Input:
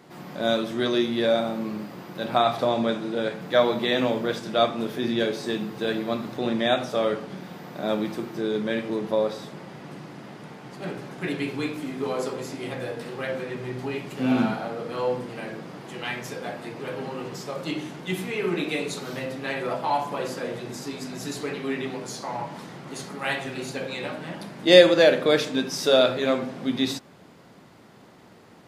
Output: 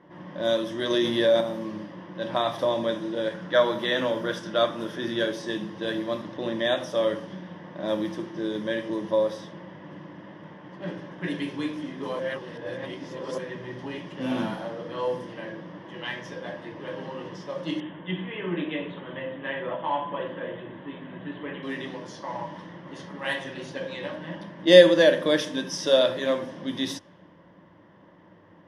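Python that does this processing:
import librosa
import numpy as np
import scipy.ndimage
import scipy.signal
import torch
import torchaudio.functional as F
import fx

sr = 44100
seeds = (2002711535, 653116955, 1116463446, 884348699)

y = fx.env_flatten(x, sr, amount_pct=70, at=(0.9, 1.41))
y = fx.peak_eq(y, sr, hz=1400.0, db=9.0, octaves=0.28, at=(3.34, 5.33))
y = fx.high_shelf(y, sr, hz=8400.0, db=-8.5, at=(6.22, 6.65))
y = fx.ellip_lowpass(y, sr, hz=3300.0, order=4, stop_db=40, at=(17.8, 21.63))
y = fx.edit(y, sr, fx.reverse_span(start_s=12.19, length_s=1.19), tone=tone)
y = fx.env_lowpass(y, sr, base_hz=1900.0, full_db=-21.5)
y = fx.ripple_eq(y, sr, per_octave=1.2, db=10)
y = y * 10.0 ** (-3.5 / 20.0)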